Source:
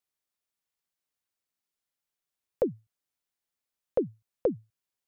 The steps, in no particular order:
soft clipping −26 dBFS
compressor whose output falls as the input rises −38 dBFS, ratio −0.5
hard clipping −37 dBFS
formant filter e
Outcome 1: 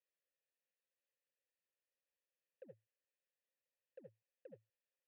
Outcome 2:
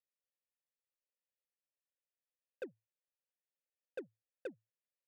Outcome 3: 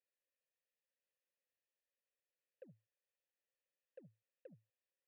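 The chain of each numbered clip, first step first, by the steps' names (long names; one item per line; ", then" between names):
soft clipping, then compressor whose output falls as the input rises, then hard clipping, then formant filter
soft clipping, then formant filter, then hard clipping, then compressor whose output falls as the input rises
soft clipping, then compressor whose output falls as the input rises, then formant filter, then hard clipping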